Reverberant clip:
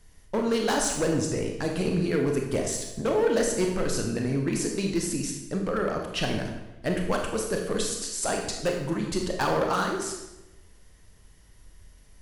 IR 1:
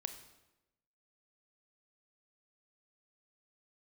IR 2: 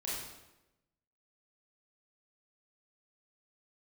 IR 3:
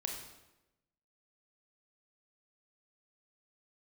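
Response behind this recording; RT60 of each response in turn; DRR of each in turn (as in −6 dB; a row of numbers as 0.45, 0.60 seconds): 3; 1.0, 1.0, 1.0 seconds; 8.0, −7.5, 1.5 decibels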